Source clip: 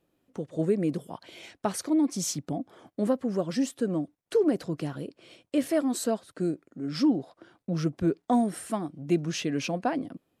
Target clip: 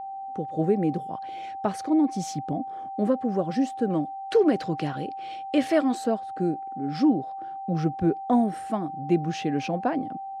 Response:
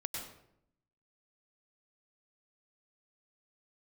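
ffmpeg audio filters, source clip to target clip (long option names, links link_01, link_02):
-filter_complex "[0:a]asettb=1/sr,asplit=3[link_01][link_02][link_03];[link_01]atrim=end=3.904[link_04];[link_02]atrim=start=3.9:end=5.95,asetpts=PTS-STARTPTS,afade=type=in:duration=0.004:curve=qsin,afade=type=out:start_time=2.046:duration=0.004:curve=qsin,equalizer=frequency=3600:width=0.34:gain=9.5[link_05];[link_03]atrim=start=5.946[link_06];[link_04][link_05]acrossfade=duration=0.004:curve1=hsin:curve2=qsin[link_07];[link_07][link_06]acrossfade=duration=0.004:curve1=qsin:curve2=hsin,aeval=exprs='val(0)+0.0178*sin(2*PI*780*n/s)':channel_layout=same,aemphasis=mode=reproduction:type=75kf,volume=2.5dB"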